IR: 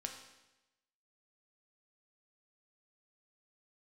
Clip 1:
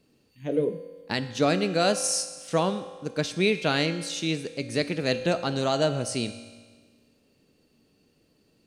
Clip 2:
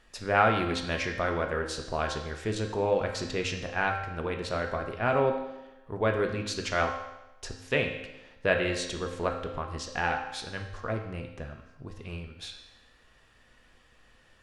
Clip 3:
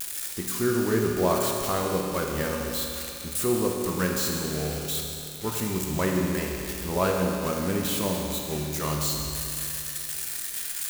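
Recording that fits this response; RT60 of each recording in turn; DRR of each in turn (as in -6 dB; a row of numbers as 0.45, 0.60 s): 2; 1.5, 1.0, 2.7 s; 9.0, 2.5, -1.0 dB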